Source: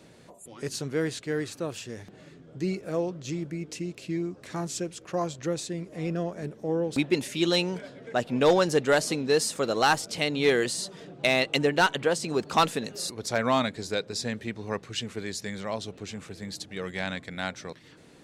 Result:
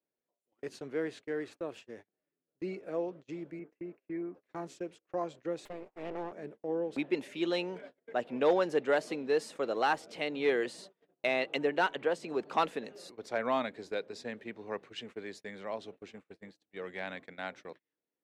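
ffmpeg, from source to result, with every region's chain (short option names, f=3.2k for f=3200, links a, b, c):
-filter_complex "[0:a]asettb=1/sr,asplit=3[a][b][c];[a]atrim=end=3.594[d];[b]atrim=start=3.59:end=4.35,asetpts=PTS-STARTPTS,afade=t=in:d=0.004:c=qsin,afade=t=out:st=0.756:d=0.004:c=qsin,highpass=150,lowpass=6.4k,highshelf=f=2.6k:t=q:w=1.5:g=-12.5[e];[c]atrim=start=4.346[f];[d][e]acrossfade=d=0.004:c1=hsin:c2=qsin[g];[g][f]acrossfade=d=0.004:c1=qsin:c2=hsin,asettb=1/sr,asplit=3[h][i][j];[h]atrim=end=5.654[k];[i]atrim=start=5.65:end=6.32,asetpts=PTS-STARTPTS,afade=t=in:d=0.004:c=qsin,afade=t=out:st=0.666:d=0.004:c=qsin,equalizer=f=220:w=3.9:g=10,aeval=exprs='abs(val(0))':c=same[l];[j]atrim=start=6.316[m];[k][l]acrossfade=d=0.004:c1=hsin:c2=qsin[n];[n][m]acrossfade=d=0.004:c1=qsin:c2=hsin,acrossover=split=250 2900:gain=0.141 1 0.158[o][p][q];[o][p][q]amix=inputs=3:normalize=0,agate=range=-32dB:threshold=-43dB:ratio=16:detection=peak,equalizer=f=1.3k:w=1.5:g=-3,volume=-4.5dB"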